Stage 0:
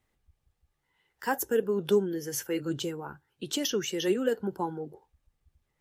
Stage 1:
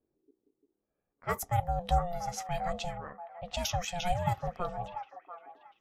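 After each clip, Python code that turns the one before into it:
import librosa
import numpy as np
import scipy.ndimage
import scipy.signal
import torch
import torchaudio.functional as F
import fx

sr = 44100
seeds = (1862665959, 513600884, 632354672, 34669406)

y = x * np.sin(2.0 * np.pi * 350.0 * np.arange(len(x)) / sr)
y = fx.echo_stepped(y, sr, ms=690, hz=1000.0, octaves=0.7, feedback_pct=70, wet_db=-6)
y = fx.env_lowpass(y, sr, base_hz=580.0, full_db=-28.5)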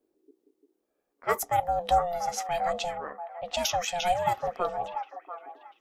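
y = fx.low_shelf_res(x, sr, hz=210.0, db=-13.0, q=1.5)
y = y * 10.0 ** (5.5 / 20.0)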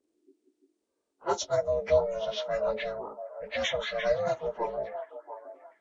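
y = fx.partial_stretch(x, sr, pct=82)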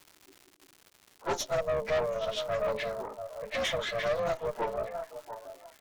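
y = fx.dmg_crackle(x, sr, seeds[0], per_s=300.0, level_db=-42.0)
y = fx.tube_stage(y, sr, drive_db=28.0, bias=0.65)
y = y * 10.0 ** (3.5 / 20.0)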